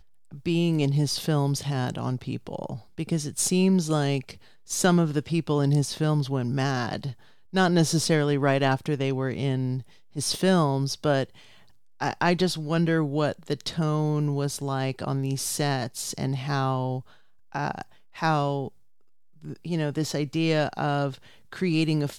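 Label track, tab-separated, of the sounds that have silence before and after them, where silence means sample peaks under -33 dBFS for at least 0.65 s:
12.010000	18.680000	sound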